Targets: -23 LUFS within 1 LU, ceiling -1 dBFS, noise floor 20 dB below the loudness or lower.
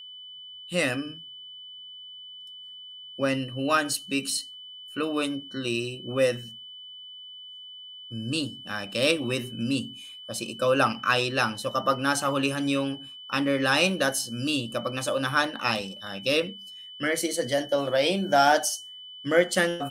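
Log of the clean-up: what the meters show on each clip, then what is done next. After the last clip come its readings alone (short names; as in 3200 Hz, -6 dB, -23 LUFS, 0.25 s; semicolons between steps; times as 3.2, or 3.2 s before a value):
steady tone 3000 Hz; tone level -41 dBFS; loudness -26.0 LUFS; peak -6.5 dBFS; loudness target -23.0 LUFS
-> notch 3000 Hz, Q 30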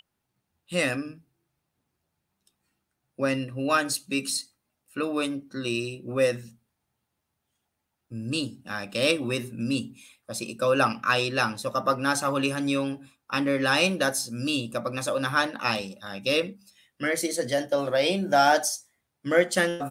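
steady tone none; loudness -26.5 LUFS; peak -6.0 dBFS; loudness target -23.0 LUFS
-> gain +3.5 dB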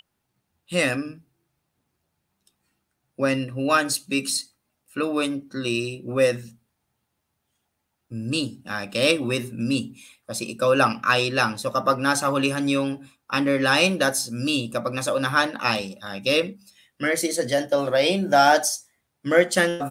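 loudness -22.5 LUFS; peak -2.5 dBFS; noise floor -77 dBFS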